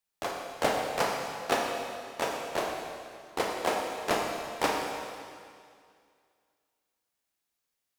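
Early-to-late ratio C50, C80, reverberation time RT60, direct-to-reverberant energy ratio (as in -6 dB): 1.0 dB, 2.5 dB, 2.2 s, -0.5 dB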